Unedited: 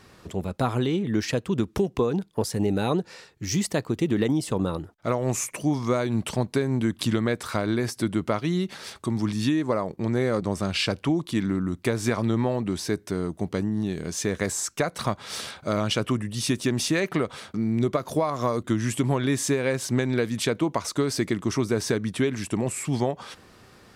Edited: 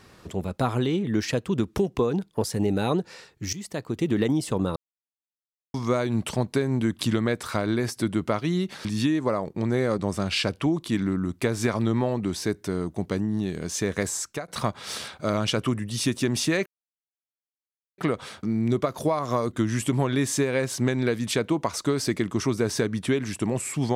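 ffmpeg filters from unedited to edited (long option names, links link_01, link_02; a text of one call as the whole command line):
ffmpeg -i in.wav -filter_complex "[0:a]asplit=7[link_01][link_02][link_03][link_04][link_05][link_06][link_07];[link_01]atrim=end=3.53,asetpts=PTS-STARTPTS,afade=type=out:start_time=3.526:duration=0.004:curve=hsin:silence=0.149624[link_08];[link_02]atrim=start=3.53:end=4.76,asetpts=PTS-STARTPTS,afade=type=in:duration=0.58:silence=0.149624,afade=type=out:start_time=1.226:duration=0.004:curve=hsin[link_09];[link_03]atrim=start=4.76:end=5.74,asetpts=PTS-STARTPTS,volume=0[link_10];[link_04]atrim=start=5.74:end=8.852,asetpts=PTS-STARTPTS,afade=type=in:duration=0.004:curve=hsin[link_11];[link_05]atrim=start=9.278:end=14.91,asetpts=PTS-STARTPTS,afade=type=out:start_time=5.152:duration=0.48:curve=qsin:silence=0.177828[link_12];[link_06]atrim=start=14.91:end=17.09,asetpts=PTS-STARTPTS,afade=type=in:duration=0.004:curve=hsin:silence=0.177828,afade=type=out:start_time=2.176:duration=0.004:curve=hsin,apad=pad_dur=1.32[link_13];[link_07]atrim=start=17.09,asetpts=PTS-STARTPTS,afade=type=in:duration=0.004:curve=hsin[link_14];[link_08][link_09][link_10][link_11]concat=n=4:v=0:a=1[link_15];[link_12][link_13][link_14]concat=n=3:v=0:a=1[link_16];[link_15][link_16]acrossfade=duration=0.004:curve1=hsin:curve2=hsin" out.wav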